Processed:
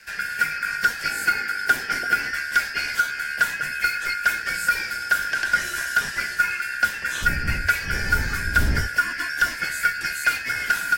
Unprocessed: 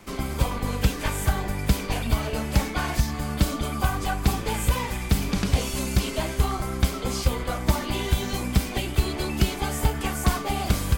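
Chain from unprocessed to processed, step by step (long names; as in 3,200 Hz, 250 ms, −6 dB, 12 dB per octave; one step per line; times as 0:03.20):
band-splitting scrambler in four parts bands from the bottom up 3142
0:07.21–0:08.86: wind on the microphone 140 Hz −21 dBFS
frequency shifter −93 Hz
0:01.10–0:02.31: hollow resonant body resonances 260/370/770 Hz, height 9 dB, ringing for 25 ms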